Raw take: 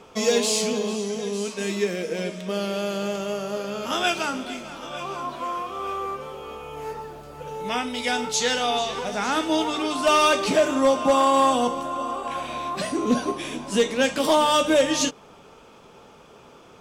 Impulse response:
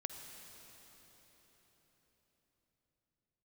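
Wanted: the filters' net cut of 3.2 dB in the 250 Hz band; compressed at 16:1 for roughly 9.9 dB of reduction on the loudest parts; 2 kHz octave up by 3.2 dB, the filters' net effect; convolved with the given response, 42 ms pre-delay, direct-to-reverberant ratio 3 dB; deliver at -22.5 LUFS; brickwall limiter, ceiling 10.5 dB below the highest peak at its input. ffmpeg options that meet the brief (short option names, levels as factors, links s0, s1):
-filter_complex "[0:a]equalizer=f=250:t=o:g=-4,equalizer=f=2000:t=o:g=4.5,acompressor=threshold=0.0631:ratio=16,alimiter=level_in=1.12:limit=0.0631:level=0:latency=1,volume=0.891,asplit=2[s0][s1];[1:a]atrim=start_sample=2205,adelay=42[s2];[s1][s2]afir=irnorm=-1:irlink=0,volume=0.841[s3];[s0][s3]amix=inputs=2:normalize=0,volume=2.82"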